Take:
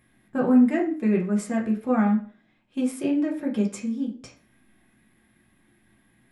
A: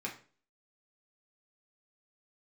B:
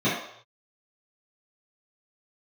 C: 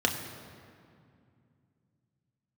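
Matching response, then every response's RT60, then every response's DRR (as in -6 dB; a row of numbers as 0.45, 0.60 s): A; 0.40 s, not exponential, 2.4 s; -2.5, -13.0, 1.5 dB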